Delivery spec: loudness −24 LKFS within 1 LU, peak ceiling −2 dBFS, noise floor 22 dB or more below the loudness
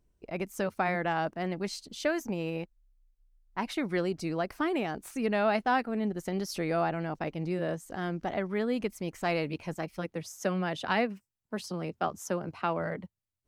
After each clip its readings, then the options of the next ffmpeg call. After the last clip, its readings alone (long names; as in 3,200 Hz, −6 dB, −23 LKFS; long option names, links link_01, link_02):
integrated loudness −32.5 LKFS; sample peak −14.5 dBFS; target loudness −24.0 LKFS
→ -af "volume=8.5dB"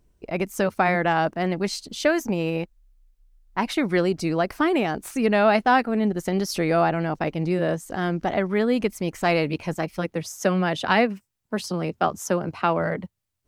integrated loudness −24.0 LKFS; sample peak −6.0 dBFS; background noise floor −71 dBFS